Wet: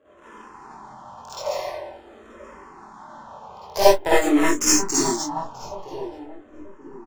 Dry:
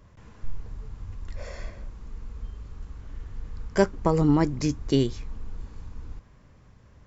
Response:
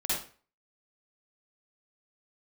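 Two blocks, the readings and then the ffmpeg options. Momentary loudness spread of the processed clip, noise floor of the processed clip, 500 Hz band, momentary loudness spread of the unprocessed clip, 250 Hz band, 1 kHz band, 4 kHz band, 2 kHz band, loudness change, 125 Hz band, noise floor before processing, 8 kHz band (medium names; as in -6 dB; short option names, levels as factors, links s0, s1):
19 LU, -49 dBFS, +6.5 dB, 20 LU, +2.0 dB, +10.0 dB, +12.0 dB, +11.0 dB, +4.0 dB, -13.0 dB, -54 dBFS, no reading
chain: -filter_complex "[0:a]highpass=400,equalizer=f=930:t=o:w=1.3:g=11.5,asplit=2[s0][s1];[s1]acompressor=threshold=0.01:ratio=6,volume=1.06[s2];[s0][s2]amix=inputs=2:normalize=0,aexciter=amount=13.8:drive=4.7:freq=5400,adynamicsmooth=sensitivity=6:basefreq=600,aeval=exprs='clip(val(0),-1,0.112)':c=same,asplit=2[s3][s4];[s4]adelay=23,volume=0.596[s5];[s3][s5]amix=inputs=2:normalize=0,asplit=2[s6][s7];[s7]adelay=933,lowpass=f=830:p=1,volume=0.299,asplit=2[s8][s9];[s9]adelay=933,lowpass=f=830:p=1,volume=0.39,asplit=2[s10][s11];[s11]adelay=933,lowpass=f=830:p=1,volume=0.39,asplit=2[s12][s13];[s13]adelay=933,lowpass=f=830:p=1,volume=0.39[s14];[s6][s8][s10][s12][s14]amix=inputs=5:normalize=0[s15];[1:a]atrim=start_sample=2205,atrim=end_sample=4410[s16];[s15][s16]afir=irnorm=-1:irlink=0,asplit=2[s17][s18];[s18]afreqshift=-0.47[s19];[s17][s19]amix=inputs=2:normalize=1"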